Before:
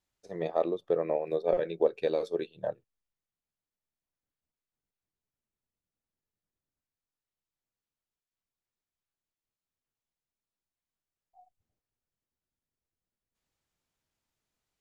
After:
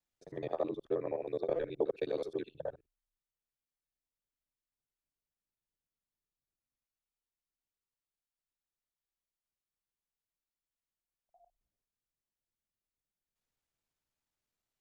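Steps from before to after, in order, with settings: time reversed locally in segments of 53 ms; frequency shift -32 Hz; trim -6 dB

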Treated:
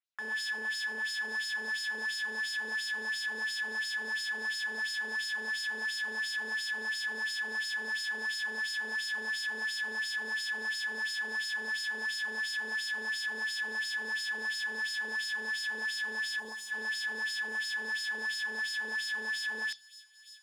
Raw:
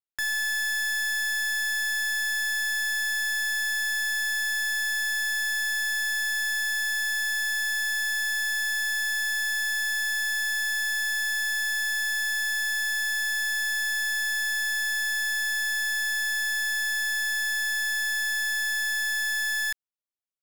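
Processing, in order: peaking EQ 9.5 kHz +6 dB 0.22 oct; in parallel at -7 dB: sample-rate reducer 6.7 kHz, jitter 0%; on the sum: LFO band-pass sine 2.9 Hz 450–5000 Hz; on a send at -20 dB: resonant high shelf 2.5 kHz +13.5 dB, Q 3 + reverberation RT60 0.30 s, pre-delay 3 ms; on the sum: peak limiter -33 dBFS, peak gain reduction 10.5 dB; time-frequency box 16.40–16.71 s, 1.2–5.8 kHz -9 dB; feedback echo behind a high-pass 913 ms, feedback 40%, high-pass 4.1 kHz, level -12 dB; trim +5 dB

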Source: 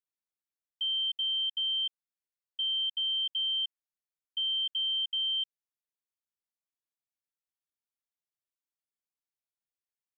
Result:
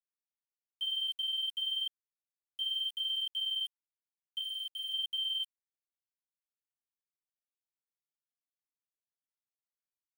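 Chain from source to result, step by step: 4.41–4.92 s: elliptic low-pass 2.9 kHz, stop band 80 dB; flange 0.96 Hz, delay 4.4 ms, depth 3.4 ms, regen -48%; small samples zeroed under -46 dBFS

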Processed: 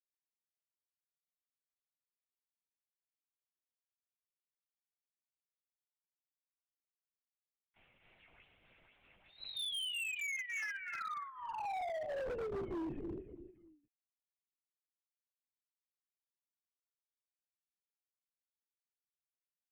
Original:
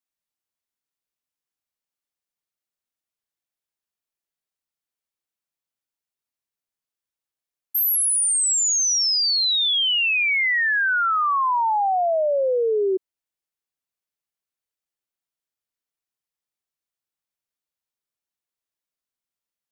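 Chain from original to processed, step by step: companding laws mixed up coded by mu; high-order bell 1.3 kHz -9 dB 1.3 oct; expander -20 dBFS; chorus 0.4 Hz, delay 18.5 ms, depth 4.4 ms; comb 2.2 ms, depth 78%; mistuned SSB -92 Hz 530–2800 Hz; on a send: feedback delay 290 ms, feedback 31%, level -18 dB; on the sum: LPC vocoder at 8 kHz whisper; compression 12:1, threshold -34 dBFS, peak gain reduction 16 dB; hard clipper -39 dBFS, distortion -9 dB; trim +1.5 dB

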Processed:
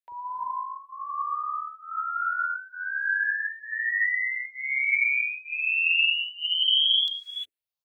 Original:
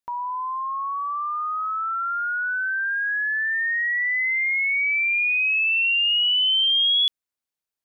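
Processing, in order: bands offset in time highs, lows 40 ms, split 480 Hz; gated-style reverb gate 380 ms rising, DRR -1.5 dB; barber-pole phaser +1.2 Hz; trim -5 dB

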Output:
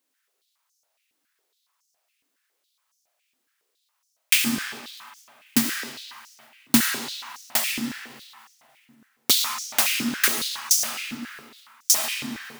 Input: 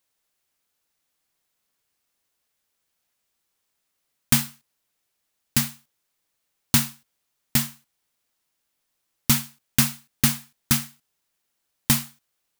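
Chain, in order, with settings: algorithmic reverb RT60 2.6 s, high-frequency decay 0.7×, pre-delay 30 ms, DRR 1 dB; modulation noise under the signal 14 dB; step-sequenced high-pass 7.2 Hz 270–5900 Hz; trim -1 dB

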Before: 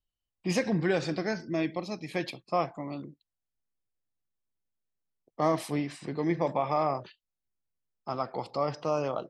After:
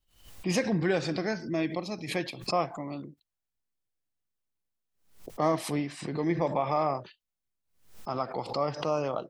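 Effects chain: swell ahead of each attack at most 110 dB/s

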